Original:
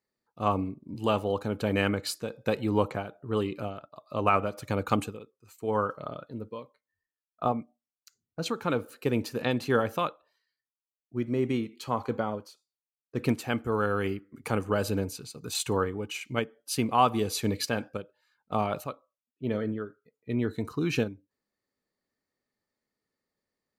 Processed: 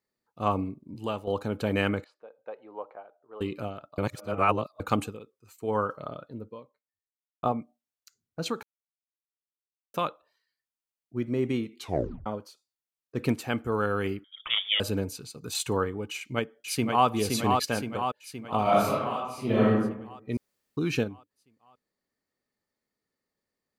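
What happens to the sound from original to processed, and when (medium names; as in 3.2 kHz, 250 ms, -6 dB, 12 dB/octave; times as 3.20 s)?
0.70–1.27 s: fade out, to -10 dB
2.04–3.41 s: ladder band-pass 800 Hz, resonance 30%
3.98–4.80 s: reverse
5.99–7.43 s: studio fade out
8.63–9.94 s: mute
11.79 s: tape stop 0.47 s
14.24–14.80 s: frequency inversion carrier 3.5 kHz
16.12–17.07 s: echo throw 520 ms, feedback 60%, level -3.5 dB
18.62–19.70 s: reverb throw, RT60 0.85 s, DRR -8 dB
20.37–20.77 s: room tone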